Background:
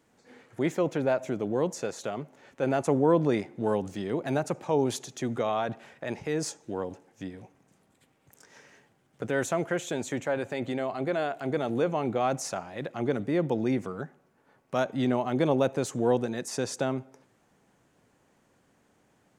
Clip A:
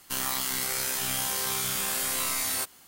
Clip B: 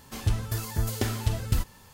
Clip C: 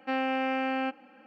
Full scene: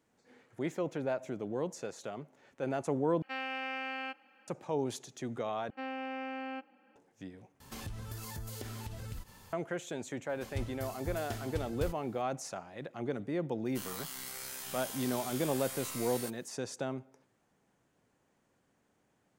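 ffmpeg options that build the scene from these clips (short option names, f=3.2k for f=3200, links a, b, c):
-filter_complex "[3:a]asplit=2[a][b];[2:a]asplit=2[c][d];[0:a]volume=-8dB[e];[a]tiltshelf=f=860:g=-8[f];[c]acompressor=threshold=-36dB:ratio=6:attack=3.2:release=140:knee=1:detection=peak[g];[e]asplit=4[h][i][j][k];[h]atrim=end=3.224[l];[f]atrim=end=1.26,asetpts=PTS-STARTPTS,volume=-9.5dB[m];[i]atrim=start=4.476:end=5.704[n];[b]atrim=end=1.26,asetpts=PTS-STARTPTS,volume=-10.5dB[o];[j]atrim=start=6.956:end=7.604[p];[g]atrim=end=1.93,asetpts=PTS-STARTPTS,volume=-3dB[q];[k]atrim=start=9.526[r];[d]atrim=end=1.93,asetpts=PTS-STARTPTS,volume=-12.5dB,afade=t=in:d=0.004:c=hsin,afade=t=out:st=1.926:d=0.004:c=hsin,adelay=10290[s];[1:a]atrim=end=2.87,asetpts=PTS-STARTPTS,volume=-13.5dB,afade=t=in:d=0.004:c=hsin,afade=t=out:st=2.866:d=0.004:c=hsin,adelay=13650[t];[l][m]acrossfade=d=0.004:c1=hsin:c2=hsin[u];[u][n]acrossfade=d=0.004:c1=hsin:c2=hsin[v];[v][o]acrossfade=d=0.004:c1=hsin:c2=hsin[w];[w][p]acrossfade=d=0.004:c1=hsin:c2=hsin[x];[x][q]acrossfade=d=0.004:c1=hsin:c2=hsin[y];[y][r]acrossfade=d=0.004:c1=hsin:c2=hsin[z];[z][s][t]amix=inputs=3:normalize=0"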